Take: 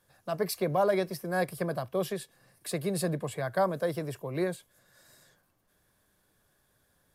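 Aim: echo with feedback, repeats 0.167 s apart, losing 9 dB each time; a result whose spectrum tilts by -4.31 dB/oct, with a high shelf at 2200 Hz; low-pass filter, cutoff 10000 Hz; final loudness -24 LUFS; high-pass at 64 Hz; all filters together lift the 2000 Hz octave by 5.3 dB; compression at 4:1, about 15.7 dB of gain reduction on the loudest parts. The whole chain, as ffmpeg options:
-af "highpass=64,lowpass=10k,equalizer=f=2k:t=o:g=4.5,highshelf=f=2.2k:g=4.5,acompressor=threshold=-40dB:ratio=4,aecho=1:1:167|334|501|668:0.355|0.124|0.0435|0.0152,volume=18dB"

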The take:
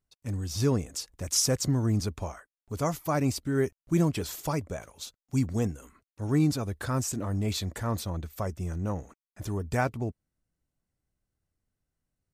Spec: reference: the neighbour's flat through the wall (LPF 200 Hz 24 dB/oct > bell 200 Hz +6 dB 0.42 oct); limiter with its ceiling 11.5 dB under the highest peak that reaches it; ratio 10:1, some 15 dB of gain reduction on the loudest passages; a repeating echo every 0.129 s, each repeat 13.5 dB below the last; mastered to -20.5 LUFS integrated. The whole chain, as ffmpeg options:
-af "acompressor=threshold=-36dB:ratio=10,alimiter=level_in=12.5dB:limit=-24dB:level=0:latency=1,volume=-12.5dB,lowpass=f=200:w=0.5412,lowpass=f=200:w=1.3066,equalizer=f=200:t=o:w=0.42:g=6,aecho=1:1:129|258:0.211|0.0444,volume=27dB"

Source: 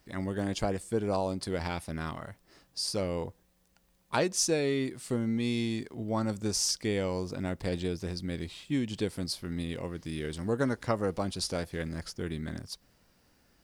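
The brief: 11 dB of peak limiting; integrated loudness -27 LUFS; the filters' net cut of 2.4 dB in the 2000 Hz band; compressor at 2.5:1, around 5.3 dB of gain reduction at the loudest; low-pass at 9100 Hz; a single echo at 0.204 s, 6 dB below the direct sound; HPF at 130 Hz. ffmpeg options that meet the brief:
-af "highpass=130,lowpass=9.1k,equalizer=f=2k:t=o:g=-3,acompressor=threshold=-32dB:ratio=2.5,alimiter=level_in=2dB:limit=-24dB:level=0:latency=1,volume=-2dB,aecho=1:1:204:0.501,volume=10.5dB"

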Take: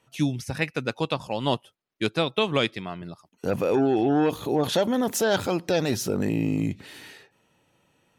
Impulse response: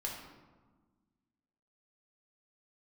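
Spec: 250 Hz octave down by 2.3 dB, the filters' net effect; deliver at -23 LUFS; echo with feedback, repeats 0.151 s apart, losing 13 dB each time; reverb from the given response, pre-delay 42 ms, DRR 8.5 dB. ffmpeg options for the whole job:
-filter_complex "[0:a]equalizer=f=250:t=o:g=-3,aecho=1:1:151|302|453:0.224|0.0493|0.0108,asplit=2[a][b];[1:a]atrim=start_sample=2205,adelay=42[c];[b][c]afir=irnorm=-1:irlink=0,volume=-9.5dB[d];[a][d]amix=inputs=2:normalize=0,volume=2.5dB"

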